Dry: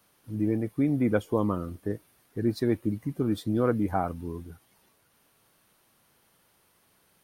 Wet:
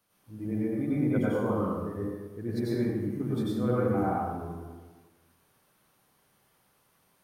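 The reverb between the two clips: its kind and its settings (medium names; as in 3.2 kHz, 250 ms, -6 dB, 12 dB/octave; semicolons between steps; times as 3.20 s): plate-style reverb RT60 1.3 s, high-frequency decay 0.55×, pre-delay 80 ms, DRR -8 dB; trim -10 dB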